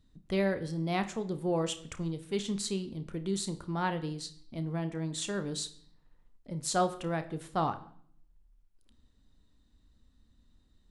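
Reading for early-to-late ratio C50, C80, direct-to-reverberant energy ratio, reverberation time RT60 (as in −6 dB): 14.0 dB, 18.0 dB, 9.5 dB, 0.55 s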